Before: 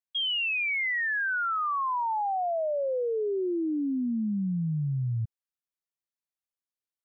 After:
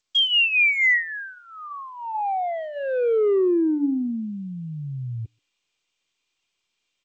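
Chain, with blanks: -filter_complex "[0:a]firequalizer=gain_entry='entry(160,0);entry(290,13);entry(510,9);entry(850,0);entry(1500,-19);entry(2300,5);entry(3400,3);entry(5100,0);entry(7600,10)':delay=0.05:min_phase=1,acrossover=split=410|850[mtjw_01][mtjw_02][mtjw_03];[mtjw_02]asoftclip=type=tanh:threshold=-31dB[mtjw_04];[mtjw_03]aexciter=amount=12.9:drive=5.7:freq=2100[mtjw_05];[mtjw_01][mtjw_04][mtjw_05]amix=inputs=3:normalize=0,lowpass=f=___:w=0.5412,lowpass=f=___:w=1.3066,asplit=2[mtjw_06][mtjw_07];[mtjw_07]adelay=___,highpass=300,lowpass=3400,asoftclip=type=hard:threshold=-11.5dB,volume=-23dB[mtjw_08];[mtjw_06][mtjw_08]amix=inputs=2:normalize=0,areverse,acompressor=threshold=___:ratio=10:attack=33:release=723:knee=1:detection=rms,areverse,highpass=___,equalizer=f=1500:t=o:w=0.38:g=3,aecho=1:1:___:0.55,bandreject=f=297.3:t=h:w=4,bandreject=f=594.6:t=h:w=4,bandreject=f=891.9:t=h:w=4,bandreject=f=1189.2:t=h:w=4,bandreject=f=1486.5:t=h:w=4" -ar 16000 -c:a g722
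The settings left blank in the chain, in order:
3100, 3100, 130, -20dB, 88, 2.5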